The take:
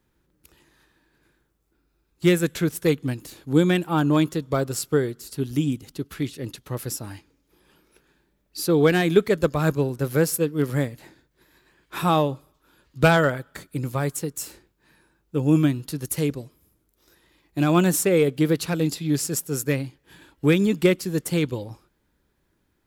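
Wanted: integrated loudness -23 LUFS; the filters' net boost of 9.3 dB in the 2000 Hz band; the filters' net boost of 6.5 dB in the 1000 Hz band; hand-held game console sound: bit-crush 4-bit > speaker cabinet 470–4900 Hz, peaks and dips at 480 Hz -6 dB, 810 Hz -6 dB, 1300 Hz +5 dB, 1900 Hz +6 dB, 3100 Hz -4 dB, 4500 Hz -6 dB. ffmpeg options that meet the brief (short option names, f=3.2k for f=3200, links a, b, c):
-af "equalizer=f=1k:t=o:g=6,equalizer=f=2k:t=o:g=5.5,acrusher=bits=3:mix=0:aa=0.000001,highpass=470,equalizer=f=480:t=q:w=4:g=-6,equalizer=f=810:t=q:w=4:g=-6,equalizer=f=1.3k:t=q:w=4:g=5,equalizer=f=1.9k:t=q:w=4:g=6,equalizer=f=3.1k:t=q:w=4:g=-4,equalizer=f=4.5k:t=q:w=4:g=-6,lowpass=f=4.9k:w=0.5412,lowpass=f=4.9k:w=1.3066,volume=-0.5dB"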